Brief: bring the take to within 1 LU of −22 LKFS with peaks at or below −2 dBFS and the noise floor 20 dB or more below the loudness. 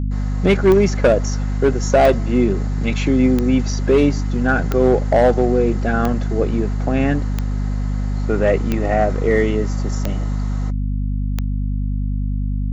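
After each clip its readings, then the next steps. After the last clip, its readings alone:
number of clicks 10; mains hum 50 Hz; hum harmonics up to 250 Hz; level of the hum −18 dBFS; integrated loudness −18.5 LKFS; sample peak −4.0 dBFS; target loudness −22.0 LKFS
→ click removal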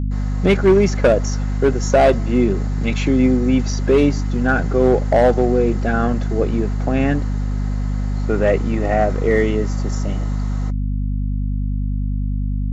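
number of clicks 0; mains hum 50 Hz; hum harmonics up to 250 Hz; level of the hum −18 dBFS
→ hum removal 50 Hz, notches 5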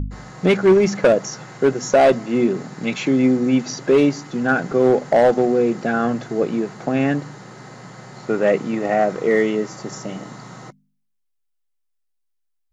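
mains hum none found; integrated loudness −18.5 LKFS; sample peak −4.5 dBFS; target loudness −22.0 LKFS
→ level −3.5 dB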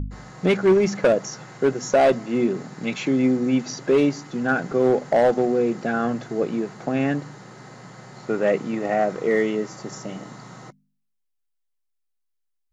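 integrated loudness −22.0 LKFS; sample peak −8.0 dBFS; background noise floor −74 dBFS

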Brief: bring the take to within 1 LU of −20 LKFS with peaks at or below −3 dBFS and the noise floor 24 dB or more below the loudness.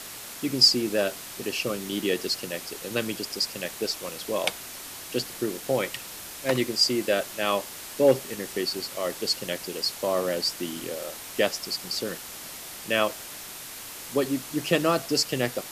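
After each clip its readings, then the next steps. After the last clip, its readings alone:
background noise floor −40 dBFS; target noise floor −51 dBFS; integrated loudness −27.0 LKFS; sample peak −7.5 dBFS; target loudness −20.0 LKFS
→ broadband denoise 11 dB, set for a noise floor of −40 dBFS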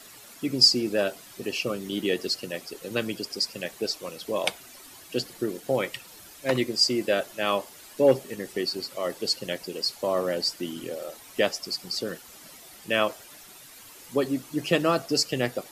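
background noise floor −48 dBFS; target noise floor −51 dBFS
→ broadband denoise 6 dB, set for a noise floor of −48 dBFS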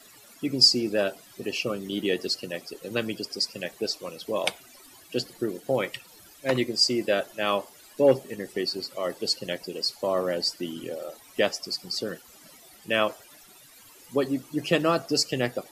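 background noise floor −52 dBFS; integrated loudness −27.0 LKFS; sample peak −7.5 dBFS; target loudness −20.0 LKFS
→ level +7 dB
brickwall limiter −3 dBFS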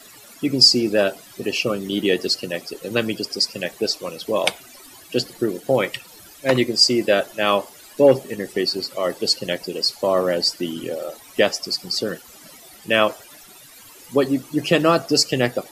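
integrated loudness −20.5 LKFS; sample peak −3.0 dBFS; background noise floor −45 dBFS

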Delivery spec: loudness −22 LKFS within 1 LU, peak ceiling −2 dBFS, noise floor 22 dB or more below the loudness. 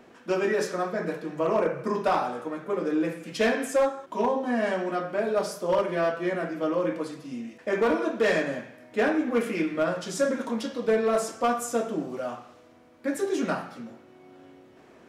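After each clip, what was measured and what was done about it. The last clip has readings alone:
share of clipped samples 0.7%; peaks flattened at −17.0 dBFS; integrated loudness −27.5 LKFS; sample peak −17.0 dBFS; target loudness −22.0 LKFS
→ clipped peaks rebuilt −17 dBFS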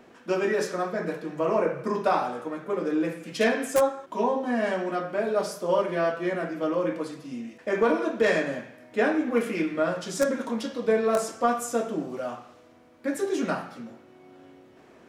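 share of clipped samples 0.0%; integrated loudness −27.0 LKFS; sample peak −8.0 dBFS; target loudness −22.0 LKFS
→ level +5 dB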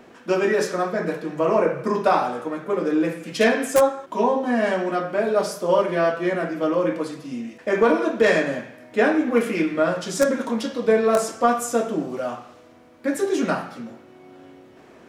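integrated loudness −22.0 LKFS; sample peak −3.0 dBFS; background noise floor −49 dBFS

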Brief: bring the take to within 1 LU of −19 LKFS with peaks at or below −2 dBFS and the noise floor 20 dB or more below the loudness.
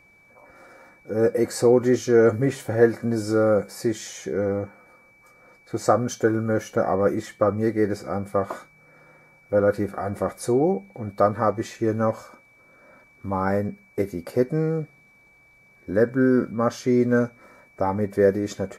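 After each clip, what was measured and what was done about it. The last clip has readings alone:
interfering tone 2,300 Hz; level of the tone −54 dBFS; integrated loudness −23.0 LKFS; sample peak −4.0 dBFS; target loudness −19.0 LKFS
→ notch filter 2,300 Hz, Q 30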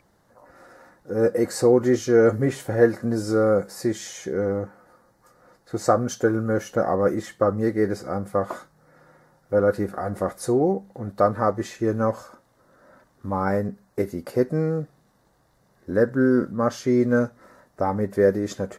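interfering tone none found; integrated loudness −23.0 LKFS; sample peak −4.0 dBFS; target loudness −19.0 LKFS
→ level +4 dB
brickwall limiter −2 dBFS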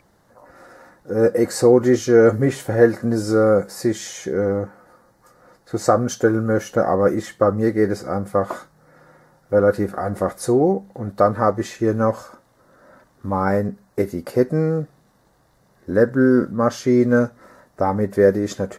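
integrated loudness −19.5 LKFS; sample peak −2.0 dBFS; background noise floor −59 dBFS

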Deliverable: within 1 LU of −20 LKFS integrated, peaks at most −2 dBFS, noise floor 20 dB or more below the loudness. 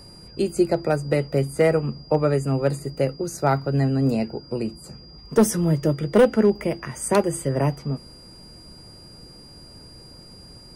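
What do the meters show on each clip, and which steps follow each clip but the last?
share of clipped samples 0.5%; peaks flattened at −9.0 dBFS; interfering tone 4,800 Hz; level of the tone −46 dBFS; integrated loudness −22.5 LKFS; sample peak −9.0 dBFS; target loudness −20.0 LKFS
→ clipped peaks rebuilt −9 dBFS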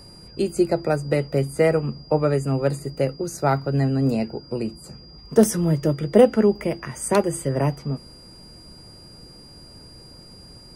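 share of clipped samples 0.0%; interfering tone 4,800 Hz; level of the tone −46 dBFS
→ notch filter 4,800 Hz, Q 30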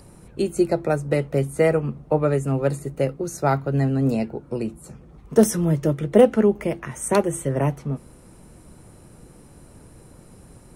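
interfering tone none found; integrated loudness −22.0 LKFS; sample peak −2.5 dBFS; target loudness −20.0 LKFS
→ level +2 dB
brickwall limiter −2 dBFS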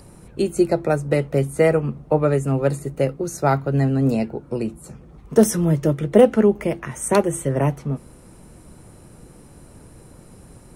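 integrated loudness −20.5 LKFS; sample peak −2.0 dBFS; background noise floor −46 dBFS

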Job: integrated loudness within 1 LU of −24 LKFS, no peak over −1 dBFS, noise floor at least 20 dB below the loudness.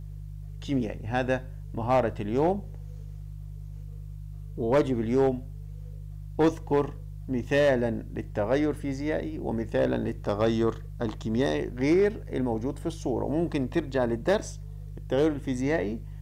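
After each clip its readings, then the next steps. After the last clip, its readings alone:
share of clipped samples 0.5%; peaks flattened at −16.0 dBFS; mains hum 50 Hz; hum harmonics up to 150 Hz; level of the hum −37 dBFS; integrated loudness −28.0 LKFS; sample peak −16.0 dBFS; target loudness −24.0 LKFS
→ clipped peaks rebuilt −16 dBFS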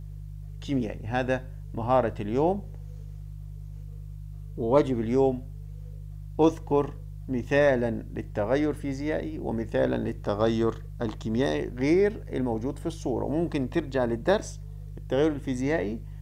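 share of clipped samples 0.0%; mains hum 50 Hz; hum harmonics up to 150 Hz; level of the hum −37 dBFS
→ hum removal 50 Hz, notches 3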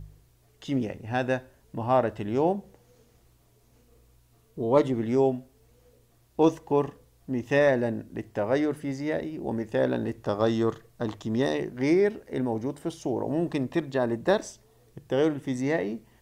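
mains hum none found; integrated loudness −27.5 LKFS; sample peak −8.0 dBFS; target loudness −24.0 LKFS
→ level +3.5 dB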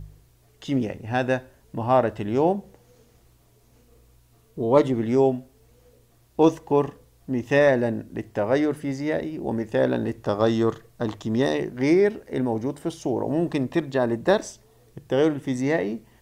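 integrated loudness −24.0 LKFS; sample peak −4.5 dBFS; background noise floor −59 dBFS

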